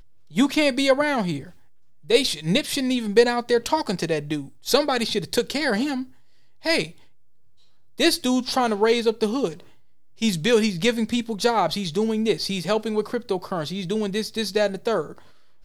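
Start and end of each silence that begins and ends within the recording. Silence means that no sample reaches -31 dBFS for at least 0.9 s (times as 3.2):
6.87–8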